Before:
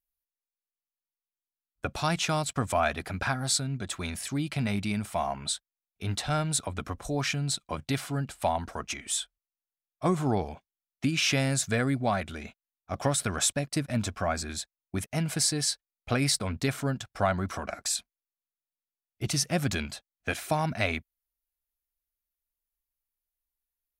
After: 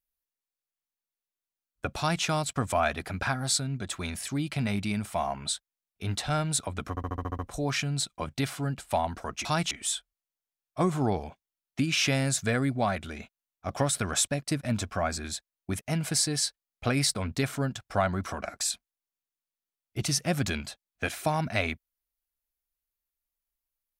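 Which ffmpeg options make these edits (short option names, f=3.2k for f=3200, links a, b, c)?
-filter_complex "[0:a]asplit=10[a][b][c][d][e][f][g][h][i][j];[a]atrim=end=6.972[k];[b]atrim=start=6.898:end=6.972[l];[c]atrim=start=6.898:end=6.972[m];[d]atrim=start=6.898:end=6.972[n];[e]atrim=start=6.898:end=6.972[o];[f]atrim=start=6.898:end=6.972[p];[g]atrim=start=6.898:end=6.972[q];[h]atrim=start=6.898:end=8.962[r];[i]atrim=start=1.978:end=2.242[s];[j]atrim=start=8.958[t];[k][l]acrossfade=d=0.004:c1=hsin:c2=hsin[u];[u][m]acrossfade=d=0.004:c1=hsin:c2=hsin[v];[v][n]acrossfade=d=0.004:c1=hsin:c2=hsin[w];[w][o]acrossfade=d=0.004:c1=hsin:c2=hsin[x];[x][p]acrossfade=d=0.004:c1=hsin:c2=hsin[y];[y][q]acrossfade=d=0.004:c1=hsin:c2=hsin[z];[z][r]acrossfade=d=0.004:c1=hsin:c2=hsin[aa];[aa][s]acrossfade=d=0.004:c1=hsin:c2=hsin[ab];[ab][t]acrossfade=d=0.004:c1=hsin:c2=hsin"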